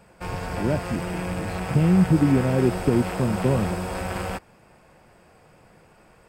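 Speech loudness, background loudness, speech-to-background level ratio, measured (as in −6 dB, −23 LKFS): −23.0 LKFS, −30.0 LKFS, 7.0 dB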